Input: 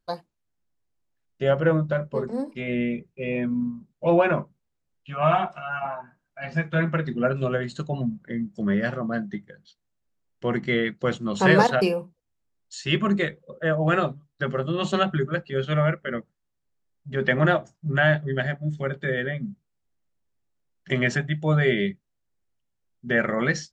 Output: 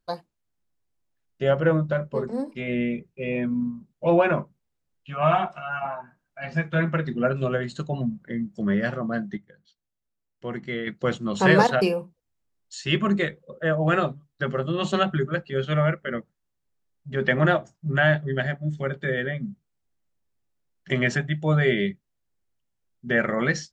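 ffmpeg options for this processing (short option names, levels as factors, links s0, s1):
-filter_complex "[0:a]asplit=3[s0][s1][s2];[s0]atrim=end=9.372[s3];[s1]atrim=start=9.368:end=10.872,asetpts=PTS-STARTPTS,volume=0.447[s4];[s2]atrim=start=10.868[s5];[s3][s4]acrossfade=d=0.004:c1=hsin:c2=hsin[s6];[s6][s5]acrossfade=d=0.004:c1=hsin:c2=hsin"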